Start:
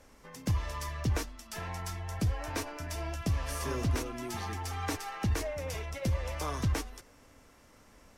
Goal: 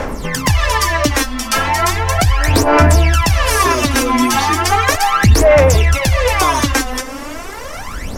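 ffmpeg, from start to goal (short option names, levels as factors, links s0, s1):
-filter_complex "[0:a]equalizer=f=1100:w=0.4:g=5,acrossover=split=1500|5600[s0][s1][s2];[s0]acompressor=threshold=0.0126:ratio=4[s3];[s1]acompressor=threshold=0.00562:ratio=4[s4];[s2]acompressor=threshold=0.00447:ratio=4[s5];[s3][s4][s5]amix=inputs=3:normalize=0,aphaser=in_gain=1:out_gain=1:delay=3.9:decay=0.76:speed=0.36:type=sinusoidal,apsyclip=15.8,asplit=2[s6][s7];[s7]acompressor=threshold=0.0708:ratio=6,volume=0.891[s8];[s6][s8]amix=inputs=2:normalize=0,volume=0.668"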